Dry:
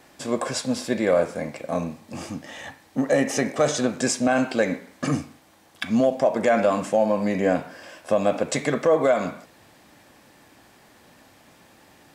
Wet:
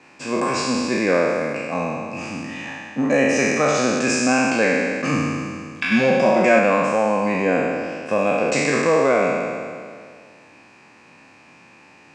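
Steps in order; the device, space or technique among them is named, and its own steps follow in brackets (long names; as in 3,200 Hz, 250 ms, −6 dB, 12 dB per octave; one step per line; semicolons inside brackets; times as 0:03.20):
peak hold with a decay on every bin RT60 2.09 s
car door speaker (loudspeaker in its box 110–8,000 Hz, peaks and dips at 640 Hz −5 dB, 1,000 Hz +4 dB, 3,400 Hz −8 dB)
parametric band 2,500 Hz +15 dB 0.23 octaves
0:05.91–0:06.59: comb filter 5.4 ms, depth 91%
high-shelf EQ 9,100 Hz −9 dB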